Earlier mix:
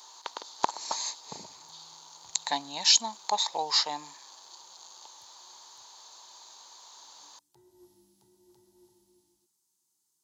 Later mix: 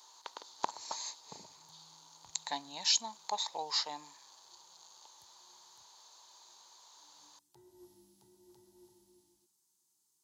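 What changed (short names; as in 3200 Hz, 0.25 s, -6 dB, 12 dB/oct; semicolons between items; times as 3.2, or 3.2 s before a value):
speech -9.0 dB; reverb: on, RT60 0.30 s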